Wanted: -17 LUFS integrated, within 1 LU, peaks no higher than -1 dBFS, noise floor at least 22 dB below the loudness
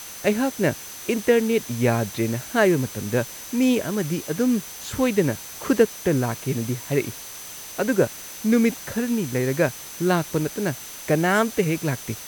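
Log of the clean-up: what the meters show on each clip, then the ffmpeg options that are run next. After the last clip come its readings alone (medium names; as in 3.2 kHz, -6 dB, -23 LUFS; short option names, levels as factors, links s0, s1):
steady tone 6.1 kHz; tone level -42 dBFS; noise floor -38 dBFS; noise floor target -46 dBFS; loudness -23.5 LUFS; peak level -4.5 dBFS; loudness target -17.0 LUFS
-> -af "bandreject=f=6100:w=30"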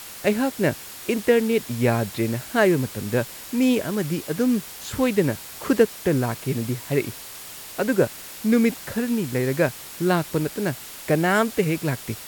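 steady tone not found; noise floor -39 dBFS; noise floor target -46 dBFS
-> -af "afftdn=nr=7:nf=-39"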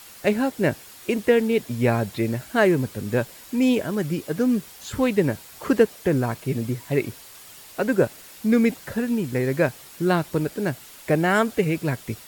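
noise floor -45 dBFS; noise floor target -46 dBFS
-> -af "afftdn=nr=6:nf=-45"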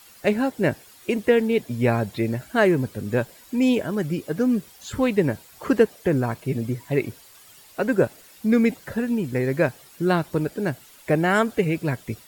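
noise floor -50 dBFS; loudness -23.5 LUFS; peak level -4.5 dBFS; loudness target -17.0 LUFS
-> -af "volume=2.11,alimiter=limit=0.891:level=0:latency=1"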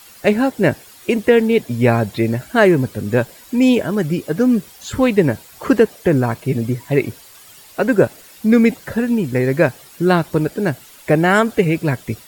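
loudness -17.0 LUFS; peak level -1.0 dBFS; noise floor -43 dBFS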